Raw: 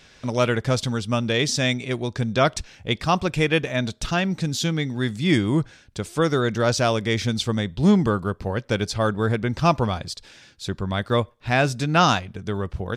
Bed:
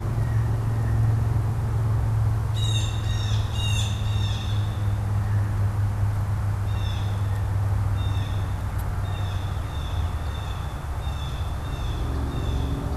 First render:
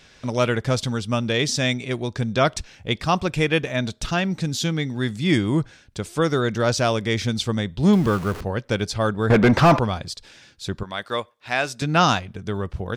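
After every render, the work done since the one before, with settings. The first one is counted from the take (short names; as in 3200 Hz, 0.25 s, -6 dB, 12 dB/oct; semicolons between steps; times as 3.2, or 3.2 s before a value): 7.93–8.41 zero-crossing step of -29 dBFS; 9.3–9.79 overdrive pedal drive 32 dB, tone 1100 Hz, clips at -4.5 dBFS; 10.83–11.82 HPF 760 Hz 6 dB/oct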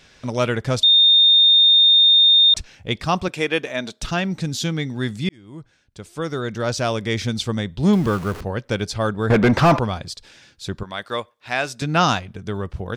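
0.83–2.54 bleep 3650 Hz -9.5 dBFS; 3.28–4.02 HPF 270 Hz; 5.29–7.15 fade in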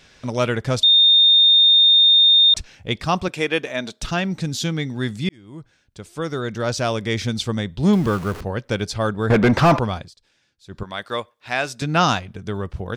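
9.98–10.81 dip -16.5 dB, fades 0.13 s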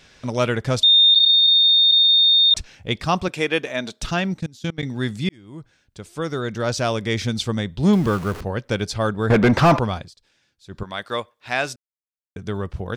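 1.14–2.51 LPC vocoder at 8 kHz pitch kept; 4.34–4.83 level quantiser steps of 23 dB; 11.76–12.36 mute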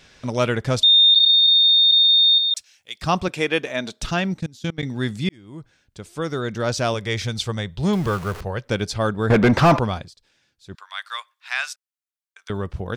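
2.38–3.02 differentiator; 6.94–8.66 bell 260 Hz -9.5 dB; 10.75–12.5 HPF 1100 Hz 24 dB/oct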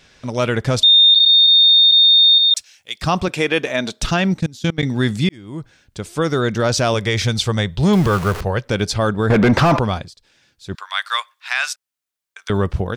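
AGC gain up to 10.5 dB; limiter -6.5 dBFS, peak gain reduction 5.5 dB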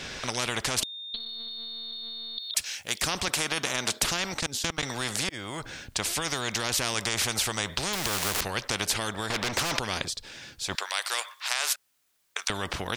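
compressor 5:1, threshold -17 dBFS, peak gain reduction 8 dB; spectral compressor 4:1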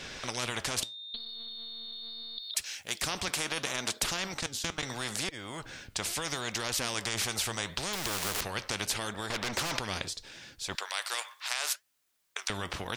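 flange 0.75 Hz, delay 1.6 ms, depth 9.9 ms, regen +81%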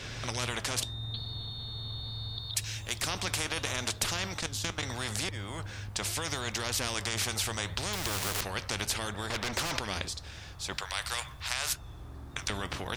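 add bed -18.5 dB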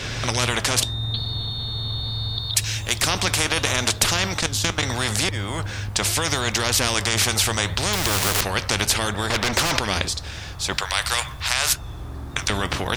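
gain +11.5 dB; limiter -3 dBFS, peak gain reduction 2 dB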